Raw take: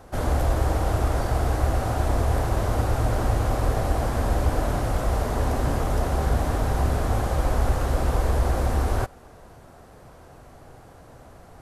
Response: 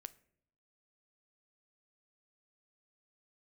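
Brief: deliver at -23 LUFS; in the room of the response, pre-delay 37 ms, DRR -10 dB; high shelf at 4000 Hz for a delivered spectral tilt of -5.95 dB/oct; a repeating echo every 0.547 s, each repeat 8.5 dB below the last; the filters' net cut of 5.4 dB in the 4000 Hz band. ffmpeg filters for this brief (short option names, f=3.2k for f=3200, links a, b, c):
-filter_complex "[0:a]highshelf=f=4k:g=-5,equalizer=f=4k:t=o:g=-4,aecho=1:1:547|1094|1641|2188:0.376|0.143|0.0543|0.0206,asplit=2[a][b];[1:a]atrim=start_sample=2205,adelay=37[c];[b][c]afir=irnorm=-1:irlink=0,volume=16dB[d];[a][d]amix=inputs=2:normalize=0,volume=-8.5dB"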